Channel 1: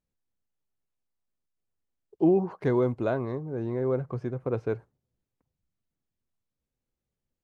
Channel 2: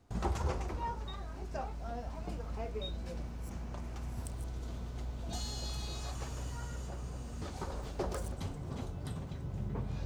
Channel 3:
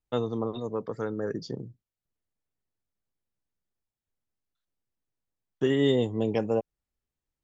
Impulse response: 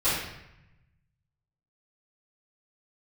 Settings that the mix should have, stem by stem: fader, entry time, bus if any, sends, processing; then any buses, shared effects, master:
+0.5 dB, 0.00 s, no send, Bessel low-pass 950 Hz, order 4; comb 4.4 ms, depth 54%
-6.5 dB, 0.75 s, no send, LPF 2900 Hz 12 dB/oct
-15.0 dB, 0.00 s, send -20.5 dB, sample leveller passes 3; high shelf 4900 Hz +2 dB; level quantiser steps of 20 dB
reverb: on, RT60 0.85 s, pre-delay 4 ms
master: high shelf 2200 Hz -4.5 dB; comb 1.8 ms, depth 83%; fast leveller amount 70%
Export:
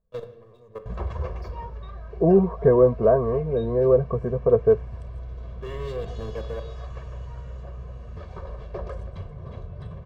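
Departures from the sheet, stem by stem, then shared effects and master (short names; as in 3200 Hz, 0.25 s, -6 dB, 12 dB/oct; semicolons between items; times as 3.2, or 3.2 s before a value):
stem 1 +0.5 dB -> +7.5 dB; stem 2 -6.5 dB -> +0.5 dB; master: missing fast leveller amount 70%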